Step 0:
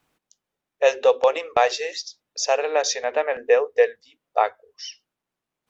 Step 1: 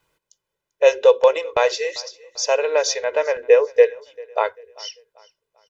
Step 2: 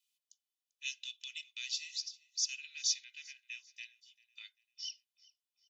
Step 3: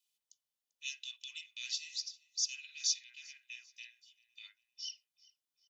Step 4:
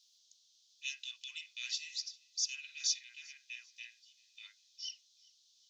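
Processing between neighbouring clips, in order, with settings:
comb 2 ms, depth 69%; feedback echo 0.393 s, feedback 38%, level -23 dB
steep high-pass 2800 Hz 36 dB/oct; gain -8 dB
bands offset in time highs, lows 50 ms, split 2000 Hz
dynamic EQ 1300 Hz, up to +8 dB, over -59 dBFS, Q 0.78; band noise 3300–6500 Hz -68 dBFS; gain -1.5 dB

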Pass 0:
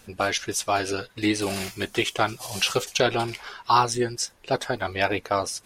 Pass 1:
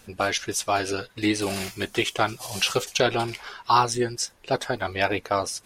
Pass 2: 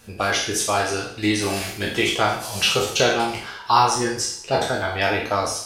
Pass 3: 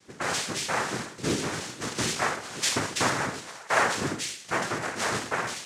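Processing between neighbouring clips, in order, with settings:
nothing audible
spectral trails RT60 0.57 s; two-slope reverb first 0.39 s, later 1.7 s, from -27 dB, DRR 3.5 dB
noise vocoder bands 3; gain -7 dB

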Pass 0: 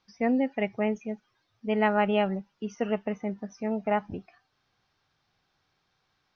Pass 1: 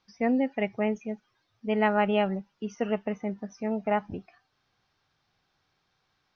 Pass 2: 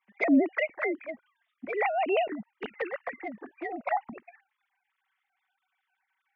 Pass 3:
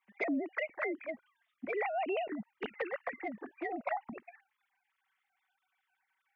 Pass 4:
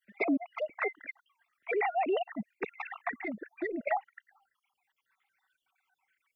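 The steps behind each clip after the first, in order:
nothing audible
sine-wave speech; bell 2000 Hz +9 dB 0.6 oct; envelope flanger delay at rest 5.3 ms, full sweep at -21 dBFS
compressor 6:1, threshold -30 dBFS, peak gain reduction 12 dB; gain -1.5 dB
random spectral dropouts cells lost 48%; gain +5.5 dB

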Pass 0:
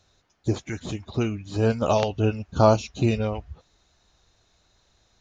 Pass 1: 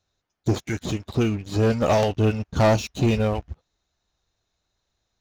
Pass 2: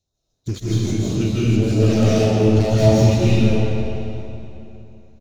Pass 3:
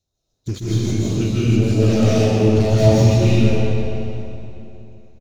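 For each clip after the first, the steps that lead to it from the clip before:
sample leveller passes 3; gain -6.5 dB
feedback echo 0.242 s, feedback 57%, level -18 dB; phaser stages 2, 1.5 Hz, lowest notch 720–2100 Hz; digital reverb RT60 2.9 s, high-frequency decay 0.75×, pre-delay 0.115 s, DRR -9 dB; gain -2 dB
echo 0.127 s -9 dB

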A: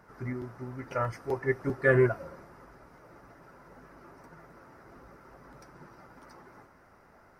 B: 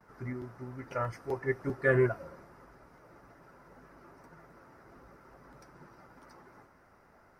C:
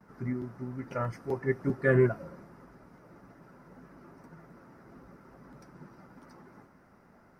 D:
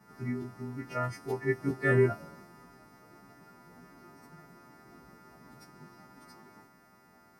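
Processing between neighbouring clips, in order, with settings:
gate with hold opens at -53 dBFS; gain -3 dB
bell 200 Hz +10 dB 1.3 oct; gain -1 dB
frequency quantiser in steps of 2 st; notch comb 530 Hz

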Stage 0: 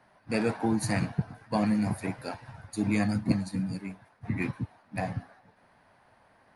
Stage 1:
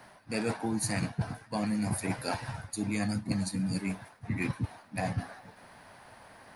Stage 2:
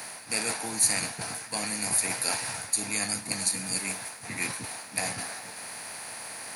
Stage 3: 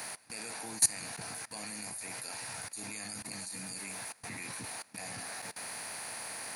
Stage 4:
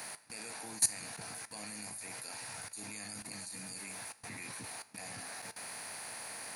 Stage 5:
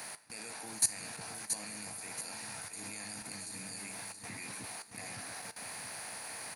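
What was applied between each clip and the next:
high shelf 4200 Hz +10 dB; reverse; compressor 6:1, threshold -37 dBFS, peak gain reduction 16.5 dB; reverse; gain +8 dB
per-bin compression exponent 0.6; tilt +4 dB/oct; gain -2 dB
level quantiser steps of 21 dB
resonator 52 Hz, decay 0.45 s, harmonics all, mix 40%
feedback echo 0.677 s, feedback 38%, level -7 dB

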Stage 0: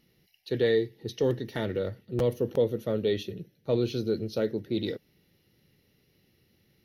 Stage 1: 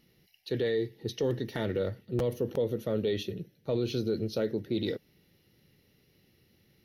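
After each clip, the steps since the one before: limiter -22 dBFS, peak gain reduction 7.5 dB; gain +1 dB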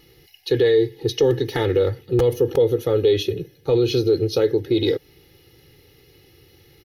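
comb 2.4 ms, depth 86%; in parallel at -2 dB: compressor, threshold -33 dBFS, peak gain reduction 11.5 dB; on the sum: gain +6.5 dB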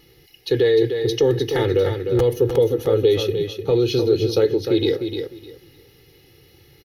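feedback echo 0.303 s, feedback 20%, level -7 dB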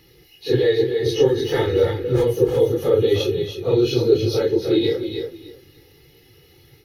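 phase scrambler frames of 0.1 s

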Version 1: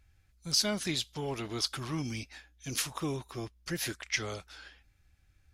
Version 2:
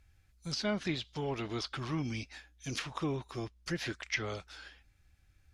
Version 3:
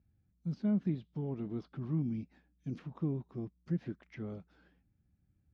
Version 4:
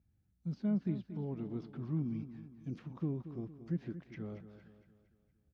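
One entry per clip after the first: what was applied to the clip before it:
treble ducked by the level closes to 2700 Hz, closed at -29 dBFS
band-pass 190 Hz, Q 2.2; gain +6.5 dB
feedback echo 0.23 s, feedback 47%, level -12 dB; gain -2 dB

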